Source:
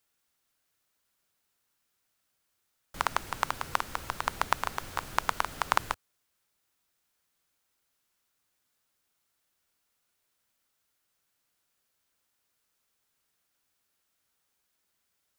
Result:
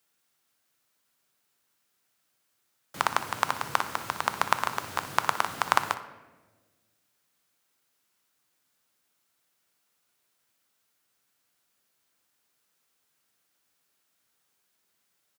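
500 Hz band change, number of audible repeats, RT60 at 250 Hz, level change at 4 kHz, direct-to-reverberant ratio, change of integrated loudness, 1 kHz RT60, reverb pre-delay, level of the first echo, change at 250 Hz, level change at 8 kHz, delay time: +3.5 dB, 1, 1.9 s, +3.5 dB, 9.5 dB, +3.5 dB, 1.1 s, 3 ms, -15.5 dB, +3.5 dB, +3.5 dB, 61 ms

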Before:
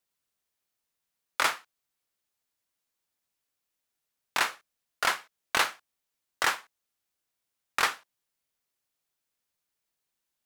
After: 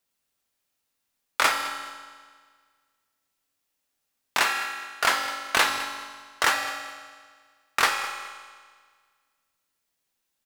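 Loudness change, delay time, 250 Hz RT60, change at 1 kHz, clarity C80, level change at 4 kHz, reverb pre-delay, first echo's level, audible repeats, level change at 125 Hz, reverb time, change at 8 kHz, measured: +4.0 dB, 208 ms, 1.7 s, +5.5 dB, 6.0 dB, +5.5 dB, 4 ms, -15.5 dB, 2, +4.5 dB, 1.7 s, +5.0 dB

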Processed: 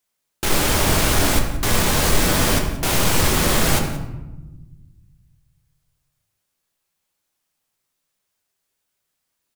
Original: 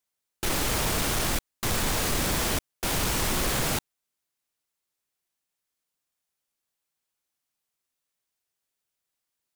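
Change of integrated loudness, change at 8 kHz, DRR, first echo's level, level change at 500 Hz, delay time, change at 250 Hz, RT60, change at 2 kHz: +8.0 dB, +7.5 dB, 1.5 dB, -17.5 dB, +9.5 dB, 178 ms, +9.5 dB, 1.1 s, +8.0 dB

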